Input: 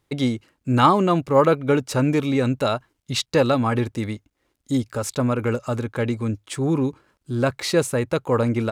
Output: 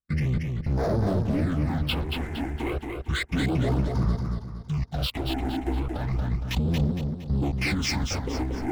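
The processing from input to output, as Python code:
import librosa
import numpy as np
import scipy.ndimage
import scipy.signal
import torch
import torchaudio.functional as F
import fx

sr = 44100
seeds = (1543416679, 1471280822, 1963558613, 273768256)

y = fx.pitch_bins(x, sr, semitones=-10.5)
y = fx.high_shelf(y, sr, hz=6900.0, db=-2.5)
y = fx.leveller(y, sr, passes=5)
y = fx.level_steps(y, sr, step_db=18)
y = fx.phaser_stages(y, sr, stages=8, low_hz=150.0, high_hz=2800.0, hz=0.32, feedback_pct=25)
y = fx.echo_feedback(y, sr, ms=231, feedback_pct=40, wet_db=-4.5)
y = fx.record_warp(y, sr, rpm=78.0, depth_cents=100.0)
y = y * librosa.db_to_amplitude(-7.0)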